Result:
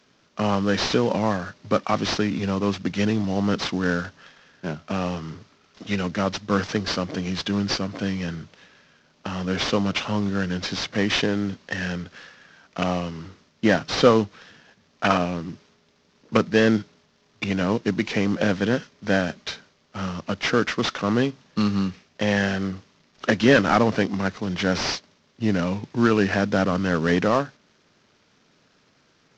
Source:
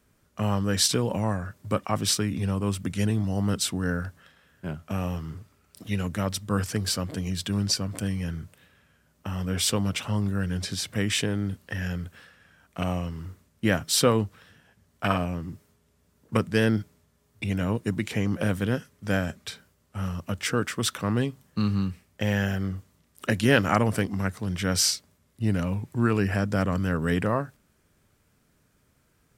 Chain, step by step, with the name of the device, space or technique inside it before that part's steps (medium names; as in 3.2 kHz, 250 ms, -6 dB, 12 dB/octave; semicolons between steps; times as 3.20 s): early wireless headset (high-pass 190 Hz 12 dB/octave; CVSD coder 32 kbps); trim +7 dB